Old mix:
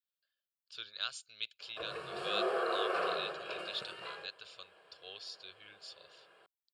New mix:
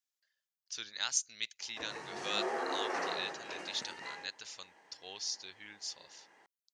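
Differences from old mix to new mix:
background -6.0 dB; master: remove fixed phaser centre 1300 Hz, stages 8

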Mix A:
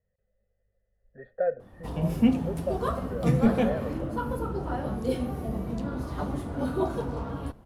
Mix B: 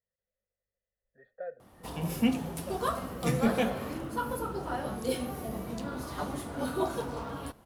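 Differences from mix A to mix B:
speech -11.0 dB; master: add tilt +2.5 dB/oct

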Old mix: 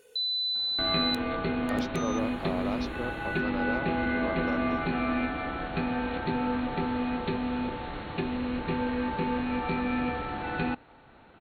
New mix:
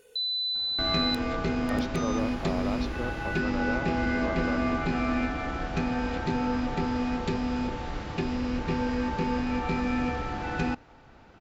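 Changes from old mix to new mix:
second sound: remove brick-wall FIR low-pass 4400 Hz; master: add low shelf 100 Hz +8.5 dB

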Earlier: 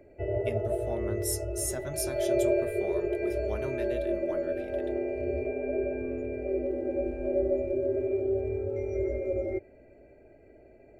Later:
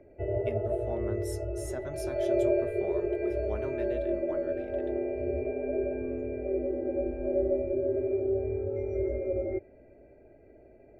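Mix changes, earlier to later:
speech: add HPF 170 Hz; master: add LPF 1700 Hz 6 dB/oct

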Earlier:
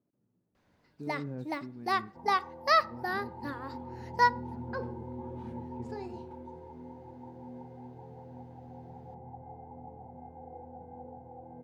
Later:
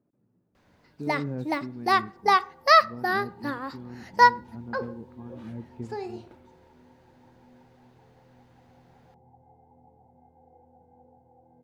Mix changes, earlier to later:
speech +6.5 dB; first sound +7.5 dB; second sound -10.5 dB

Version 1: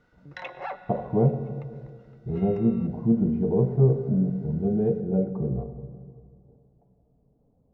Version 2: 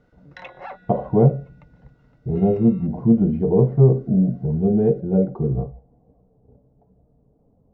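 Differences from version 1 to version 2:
speech +9.0 dB; reverb: off

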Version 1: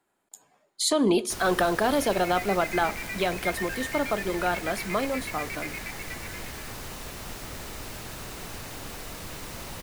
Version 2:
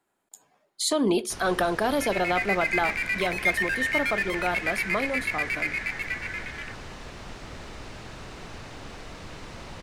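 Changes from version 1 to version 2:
first sound: add air absorption 100 m; second sound +9.5 dB; reverb: off

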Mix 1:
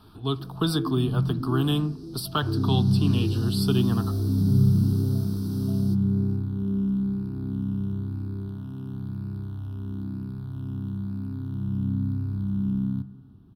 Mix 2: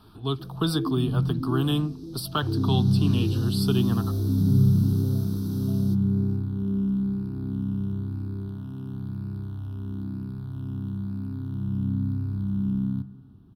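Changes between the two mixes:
speech: send off; first sound: add ripple EQ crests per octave 1.1, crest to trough 6 dB

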